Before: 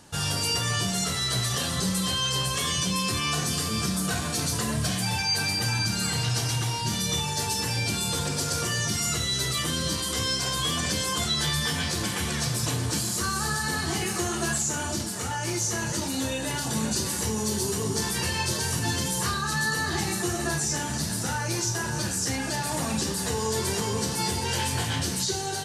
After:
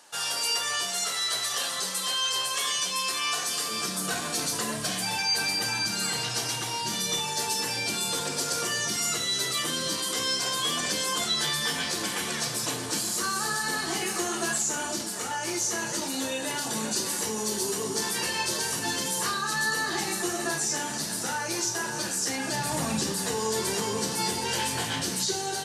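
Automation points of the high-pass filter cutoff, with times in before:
0:03.46 600 Hz
0:04.07 270 Hz
0:22.36 270 Hz
0:22.70 81 Hz
0:23.32 190 Hz

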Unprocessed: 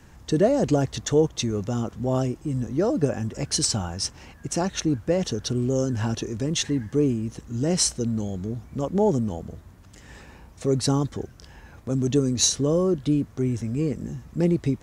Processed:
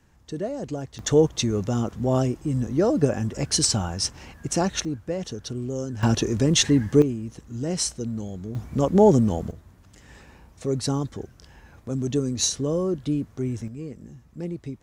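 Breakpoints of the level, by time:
−10 dB
from 0:00.99 +2 dB
from 0:04.85 −6 dB
from 0:06.03 +6 dB
from 0:07.02 −4 dB
from 0:08.55 +5.5 dB
from 0:09.51 −3 dB
from 0:13.68 −10.5 dB

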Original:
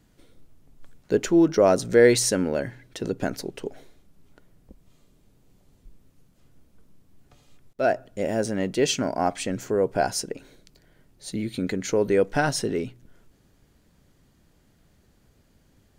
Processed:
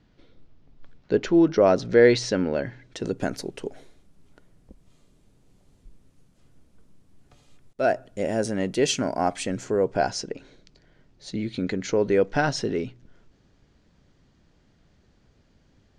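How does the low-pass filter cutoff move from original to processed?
low-pass filter 24 dB per octave
0:02.62 5,000 Hz
0:03.22 11,000 Hz
0:09.32 11,000 Hz
0:10.20 6,200 Hz

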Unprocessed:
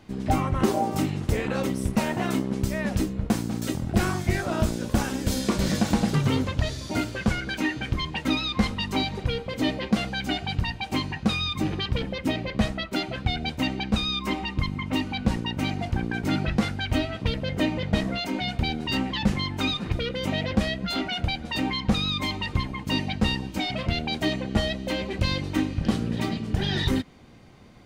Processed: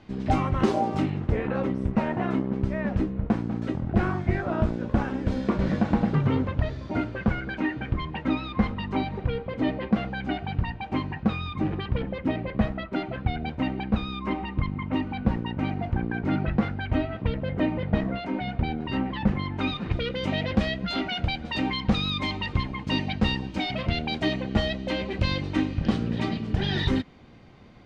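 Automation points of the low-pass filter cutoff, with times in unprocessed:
0:00.77 4,500 Hz
0:01.30 1,800 Hz
0:19.38 1,800 Hz
0:20.10 4,300 Hz

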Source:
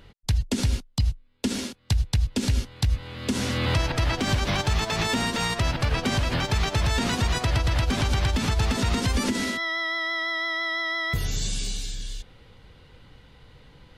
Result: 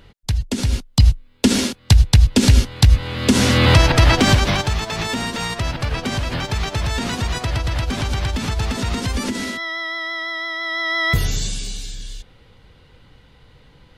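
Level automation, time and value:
0:00.62 +3 dB
0:01.03 +11.5 dB
0:04.24 +11.5 dB
0:04.80 +1.5 dB
0:10.58 +1.5 dB
0:11.11 +9.5 dB
0:11.62 +1.5 dB

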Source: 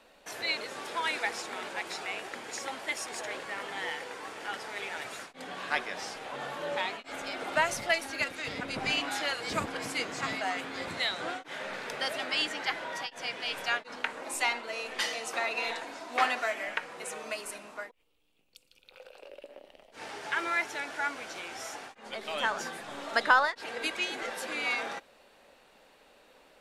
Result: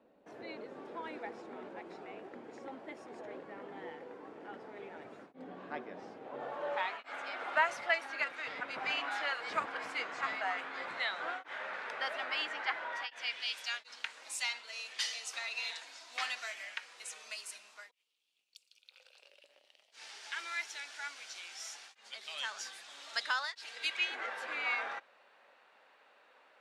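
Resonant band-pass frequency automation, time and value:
resonant band-pass, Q 1
0:06.20 270 Hz
0:06.86 1,300 Hz
0:12.91 1,300 Hz
0:13.56 5,100 Hz
0:23.75 5,100 Hz
0:24.18 1,400 Hz

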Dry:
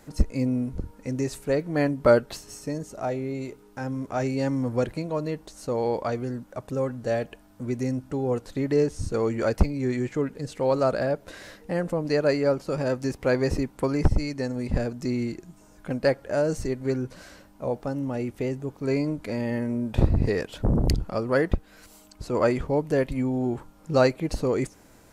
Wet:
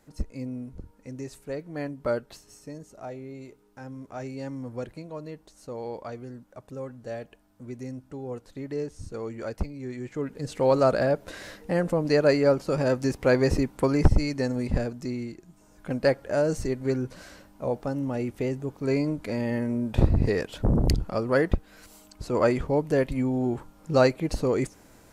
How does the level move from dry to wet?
0:09.96 −9.5 dB
0:10.54 +2 dB
0:14.55 +2 dB
0:15.36 −7.5 dB
0:15.96 0 dB

